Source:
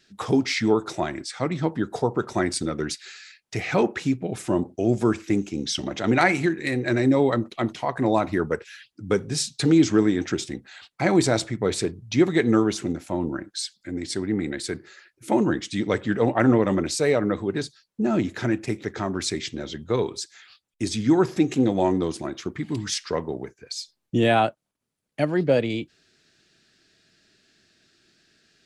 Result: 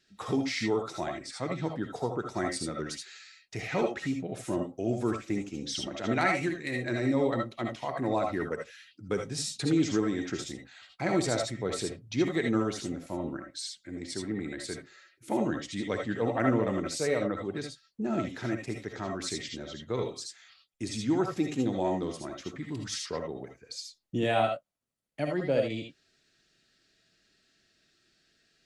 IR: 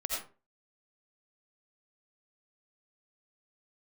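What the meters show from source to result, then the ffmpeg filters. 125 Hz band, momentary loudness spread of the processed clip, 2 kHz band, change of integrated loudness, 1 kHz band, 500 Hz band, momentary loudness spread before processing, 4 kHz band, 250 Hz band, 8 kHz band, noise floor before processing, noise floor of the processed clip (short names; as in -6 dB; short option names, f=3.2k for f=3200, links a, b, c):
-8.0 dB, 13 LU, -7.0 dB, -7.5 dB, -6.5 dB, -7.0 dB, 12 LU, -6.5 dB, -8.5 dB, -6.5 dB, -77 dBFS, -71 dBFS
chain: -filter_complex "[1:a]atrim=start_sample=2205,afade=t=out:st=0.13:d=0.01,atrim=end_sample=6174[a];[0:a][a]afir=irnorm=-1:irlink=0,volume=-7.5dB"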